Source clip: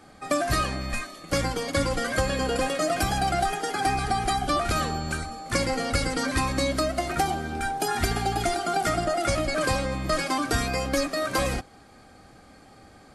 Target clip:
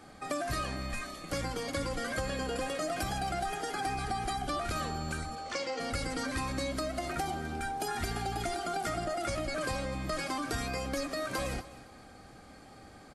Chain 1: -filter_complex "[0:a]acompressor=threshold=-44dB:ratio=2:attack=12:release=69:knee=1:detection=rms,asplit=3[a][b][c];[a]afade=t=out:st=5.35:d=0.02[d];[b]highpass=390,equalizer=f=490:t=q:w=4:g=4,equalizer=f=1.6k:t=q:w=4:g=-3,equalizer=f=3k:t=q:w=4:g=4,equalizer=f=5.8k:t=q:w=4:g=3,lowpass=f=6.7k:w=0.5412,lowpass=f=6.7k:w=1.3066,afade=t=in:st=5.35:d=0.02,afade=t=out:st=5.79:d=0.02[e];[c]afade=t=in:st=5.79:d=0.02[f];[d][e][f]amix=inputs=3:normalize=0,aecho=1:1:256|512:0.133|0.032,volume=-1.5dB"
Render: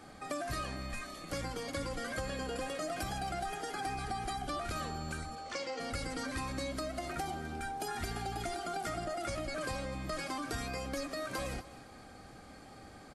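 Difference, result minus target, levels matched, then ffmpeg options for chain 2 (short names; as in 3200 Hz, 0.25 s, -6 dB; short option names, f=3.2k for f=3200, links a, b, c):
compressor: peak gain reduction +4 dB
-filter_complex "[0:a]acompressor=threshold=-36.5dB:ratio=2:attack=12:release=69:knee=1:detection=rms,asplit=3[a][b][c];[a]afade=t=out:st=5.35:d=0.02[d];[b]highpass=390,equalizer=f=490:t=q:w=4:g=4,equalizer=f=1.6k:t=q:w=4:g=-3,equalizer=f=3k:t=q:w=4:g=4,equalizer=f=5.8k:t=q:w=4:g=3,lowpass=f=6.7k:w=0.5412,lowpass=f=6.7k:w=1.3066,afade=t=in:st=5.35:d=0.02,afade=t=out:st=5.79:d=0.02[e];[c]afade=t=in:st=5.79:d=0.02[f];[d][e][f]amix=inputs=3:normalize=0,aecho=1:1:256|512:0.133|0.032,volume=-1.5dB"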